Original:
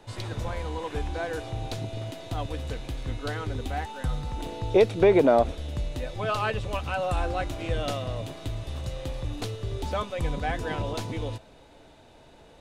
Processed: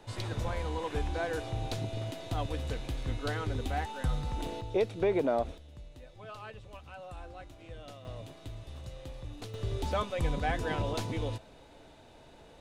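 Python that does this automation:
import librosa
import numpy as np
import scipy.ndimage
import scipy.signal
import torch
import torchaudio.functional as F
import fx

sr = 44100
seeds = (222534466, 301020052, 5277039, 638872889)

y = fx.gain(x, sr, db=fx.steps((0.0, -2.0), (4.61, -9.5), (5.58, -18.0), (8.05, -10.5), (9.54, -2.0)))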